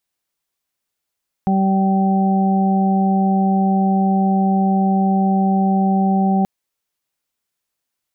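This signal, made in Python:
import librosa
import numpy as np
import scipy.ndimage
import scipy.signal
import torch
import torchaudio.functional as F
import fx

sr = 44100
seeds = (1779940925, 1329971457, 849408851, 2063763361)

y = fx.additive_steady(sr, length_s=4.98, hz=193.0, level_db=-14, upper_db=(-13.0, -17.0, -5.5))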